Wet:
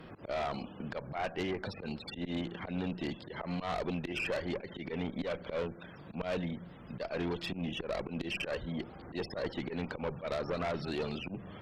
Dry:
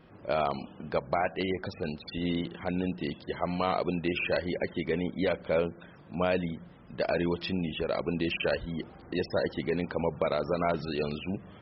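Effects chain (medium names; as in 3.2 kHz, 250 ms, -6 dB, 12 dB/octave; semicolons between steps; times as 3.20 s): slow attack 113 ms; valve stage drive 29 dB, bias 0.4; three bands compressed up and down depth 40%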